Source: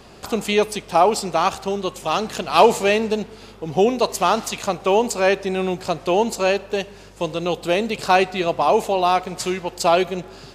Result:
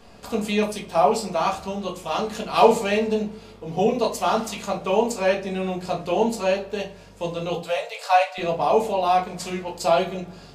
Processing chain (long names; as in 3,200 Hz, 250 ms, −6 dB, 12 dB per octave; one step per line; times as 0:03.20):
0:07.57–0:08.38: Butterworth high-pass 490 Hz 96 dB per octave
rectangular room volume 170 cubic metres, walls furnished, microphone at 1.7 metres
level −8 dB